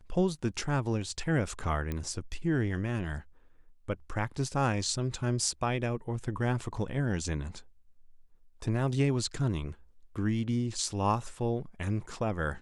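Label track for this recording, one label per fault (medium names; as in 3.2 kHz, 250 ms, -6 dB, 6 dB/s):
1.920000	1.920000	pop -21 dBFS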